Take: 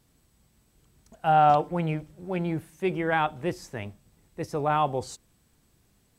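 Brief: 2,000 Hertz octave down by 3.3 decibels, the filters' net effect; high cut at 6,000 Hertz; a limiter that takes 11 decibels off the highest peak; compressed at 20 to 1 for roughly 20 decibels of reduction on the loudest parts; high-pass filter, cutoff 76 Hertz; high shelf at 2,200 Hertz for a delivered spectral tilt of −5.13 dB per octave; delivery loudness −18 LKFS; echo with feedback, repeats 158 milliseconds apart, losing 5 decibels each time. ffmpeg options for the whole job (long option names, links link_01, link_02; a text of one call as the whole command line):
ffmpeg -i in.wav -af "highpass=76,lowpass=6000,equalizer=frequency=2000:width_type=o:gain=-8.5,highshelf=frequency=2200:gain=7,acompressor=threshold=-35dB:ratio=20,alimiter=level_in=11dB:limit=-24dB:level=0:latency=1,volume=-11dB,aecho=1:1:158|316|474|632|790|948|1106:0.562|0.315|0.176|0.0988|0.0553|0.031|0.0173,volume=26.5dB" out.wav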